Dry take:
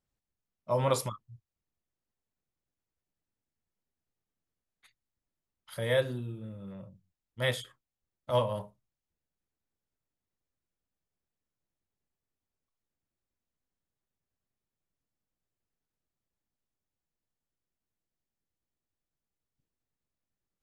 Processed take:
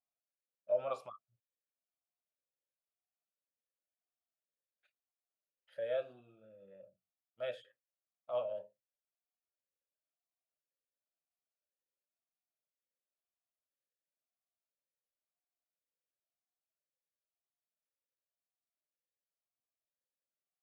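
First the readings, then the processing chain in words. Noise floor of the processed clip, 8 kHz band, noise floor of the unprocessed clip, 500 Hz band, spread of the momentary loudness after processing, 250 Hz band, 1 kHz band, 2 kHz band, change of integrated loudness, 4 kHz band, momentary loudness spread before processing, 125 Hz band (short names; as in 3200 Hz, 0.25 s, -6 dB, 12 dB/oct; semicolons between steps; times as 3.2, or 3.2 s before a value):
under -85 dBFS, under -25 dB, under -85 dBFS, -6.0 dB, 23 LU, -22.5 dB, -12.0 dB, -16.5 dB, -7.5 dB, -18.0 dB, 21 LU, -29.5 dB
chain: vowel sweep a-e 0.97 Hz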